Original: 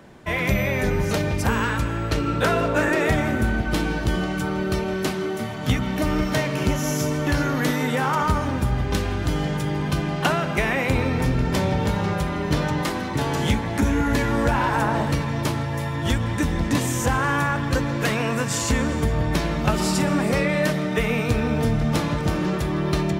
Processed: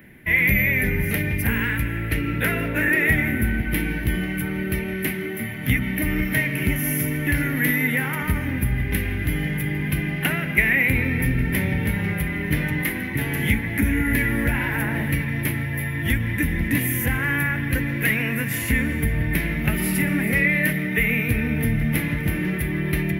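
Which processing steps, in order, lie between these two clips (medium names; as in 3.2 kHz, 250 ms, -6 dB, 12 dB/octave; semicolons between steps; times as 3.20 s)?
FFT filter 270 Hz 0 dB, 580 Hz -10 dB, 1.2 kHz -13 dB, 2 kHz +11 dB, 4.3 kHz -13 dB, 8 kHz -15 dB, 11 kHz +13 dB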